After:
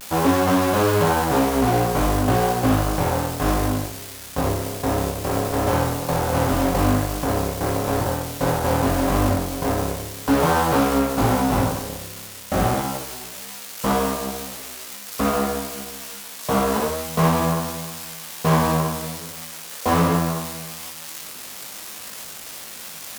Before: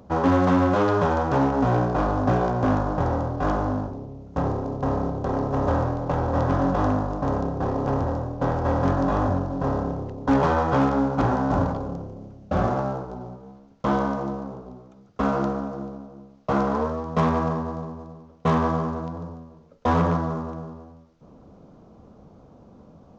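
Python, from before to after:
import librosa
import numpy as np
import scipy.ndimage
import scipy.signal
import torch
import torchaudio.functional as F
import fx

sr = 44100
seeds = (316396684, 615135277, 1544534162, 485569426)

y = x + 0.5 * 10.0 ** (-19.5 / 20.0) * np.diff(np.sign(x), prepend=np.sign(x[:1]))
y = fx.cheby_harmonics(y, sr, harmonics=(5, 7), levels_db=(-23, -17), full_scale_db=-12.5)
y = fx.room_early_taps(y, sr, ms=(19, 61), db=(-4.5, -5.5))
y = fx.vibrato(y, sr, rate_hz=0.41, depth_cents=31.0)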